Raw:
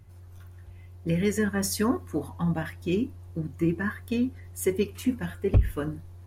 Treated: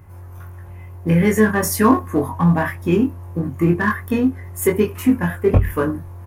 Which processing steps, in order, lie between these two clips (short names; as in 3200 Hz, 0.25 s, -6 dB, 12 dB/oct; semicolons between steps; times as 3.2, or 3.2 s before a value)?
ten-band EQ 125 Hz +7 dB, 250 Hz +5 dB, 500 Hz +5 dB, 1000 Hz +12 dB, 2000 Hz +6 dB, 4000 Hz -9 dB, 8000 Hz -5 dB; in parallel at -12 dB: hard clip -20.5 dBFS, distortion -6 dB; on the sum: high shelf 4000 Hz +10.5 dB; doubler 23 ms -3.5 dB